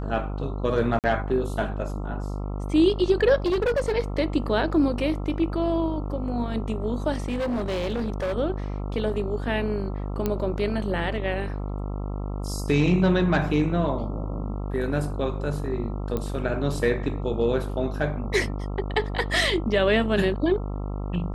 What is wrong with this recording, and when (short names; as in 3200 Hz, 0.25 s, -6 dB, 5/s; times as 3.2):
buzz 50 Hz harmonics 27 -30 dBFS
0.99–1.04 gap 48 ms
3.46–3.93 clipped -19.5 dBFS
7.26–8.34 clipped -23.5 dBFS
10.26 pop -12 dBFS
16.17 pop -16 dBFS